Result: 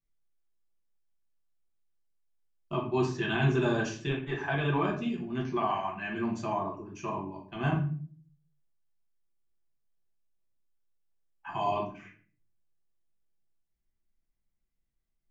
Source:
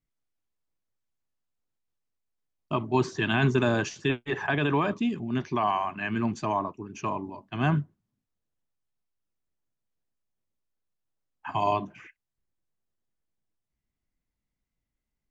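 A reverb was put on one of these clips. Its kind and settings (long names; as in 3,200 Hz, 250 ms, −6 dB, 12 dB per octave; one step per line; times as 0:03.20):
rectangular room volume 34 cubic metres, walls mixed, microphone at 0.79 metres
level −8.5 dB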